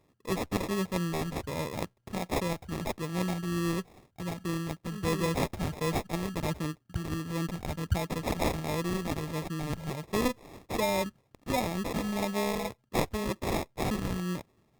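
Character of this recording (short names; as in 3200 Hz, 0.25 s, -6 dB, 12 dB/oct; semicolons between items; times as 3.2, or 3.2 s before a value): phasing stages 2, 1.4 Hz, lowest notch 510–1600 Hz; aliases and images of a low sample rate 1500 Hz, jitter 0%; Opus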